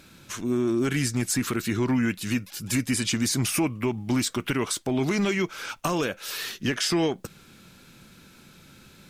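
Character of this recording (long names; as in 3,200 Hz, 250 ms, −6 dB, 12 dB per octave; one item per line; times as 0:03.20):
a quantiser's noise floor 12 bits, dither none
MP3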